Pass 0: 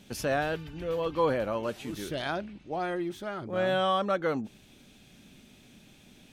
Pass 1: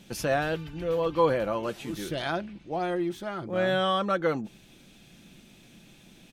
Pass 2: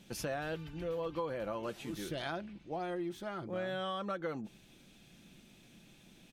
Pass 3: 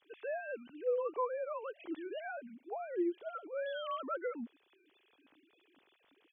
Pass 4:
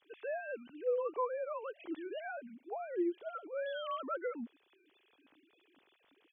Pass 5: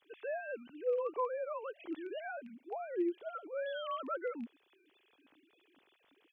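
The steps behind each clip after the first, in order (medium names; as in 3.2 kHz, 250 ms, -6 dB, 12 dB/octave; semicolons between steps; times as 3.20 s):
comb 5.9 ms, depth 32%; trim +1.5 dB
compression 6:1, threshold -28 dBFS, peak gain reduction 10.5 dB; trim -6 dB
formants replaced by sine waves
no audible change
rattle on loud lows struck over -50 dBFS, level -48 dBFS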